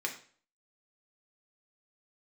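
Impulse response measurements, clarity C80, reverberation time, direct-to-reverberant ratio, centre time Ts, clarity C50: 13.5 dB, 0.45 s, 0.5 dB, 15 ms, 9.5 dB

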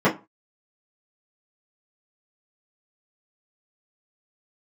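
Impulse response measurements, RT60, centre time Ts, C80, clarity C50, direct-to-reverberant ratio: 0.25 s, 18 ms, 22.0 dB, 14.0 dB, -9.0 dB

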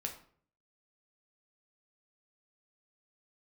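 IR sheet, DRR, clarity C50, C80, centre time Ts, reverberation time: 2.0 dB, 9.5 dB, 13.5 dB, 15 ms, 0.50 s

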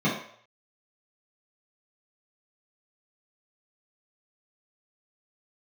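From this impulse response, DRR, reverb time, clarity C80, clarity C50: -10.0 dB, 0.60 s, 8.5 dB, 4.5 dB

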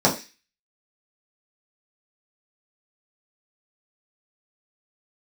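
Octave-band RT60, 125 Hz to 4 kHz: 0.20, 0.30, 0.25, 0.30, 0.45, 0.50 s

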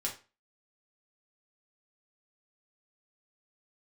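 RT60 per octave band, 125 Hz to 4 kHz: 0.35, 0.35, 0.30, 0.35, 0.30, 0.30 s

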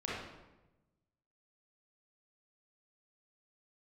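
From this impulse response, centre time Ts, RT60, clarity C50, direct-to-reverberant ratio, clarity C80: 77 ms, 1.0 s, -2.5 dB, -7.0 dB, 2.5 dB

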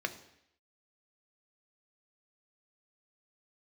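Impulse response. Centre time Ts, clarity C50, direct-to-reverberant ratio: 8 ms, 14.0 dB, 7.5 dB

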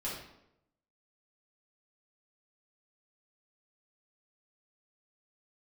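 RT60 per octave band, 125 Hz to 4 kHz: 0.95, 0.90, 0.90, 0.75, 0.70, 0.60 s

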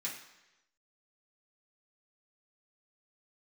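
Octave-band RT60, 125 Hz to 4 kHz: 0.90, 0.90, 1.0, 1.0, 1.0, 1.0 s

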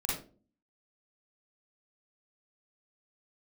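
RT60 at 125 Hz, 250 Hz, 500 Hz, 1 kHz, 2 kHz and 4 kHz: 0.55, 0.65, 0.50, 0.30, 0.25, 0.25 s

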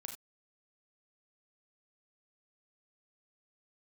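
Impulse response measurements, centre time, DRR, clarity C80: 18 ms, 3.5 dB, 13.0 dB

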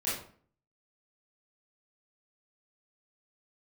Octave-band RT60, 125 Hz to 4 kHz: 0.65, 0.60, 0.50, 0.50, 0.40, 0.35 s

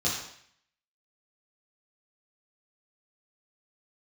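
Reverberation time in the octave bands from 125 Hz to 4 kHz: 0.65, 0.60, 0.65, 0.65, 0.70, 0.65 s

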